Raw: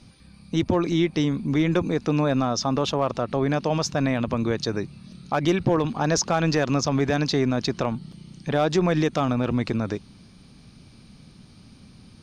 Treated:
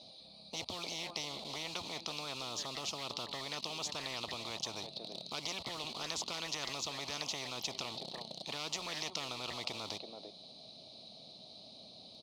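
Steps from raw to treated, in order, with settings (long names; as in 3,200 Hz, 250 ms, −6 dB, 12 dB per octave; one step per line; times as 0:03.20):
in parallel at −4 dB: bit reduction 6 bits
on the sum: pair of resonant band-passes 1,600 Hz, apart 2.6 octaves
far-end echo of a speakerphone 330 ms, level −17 dB
every bin compressed towards the loudest bin 10 to 1
level −4 dB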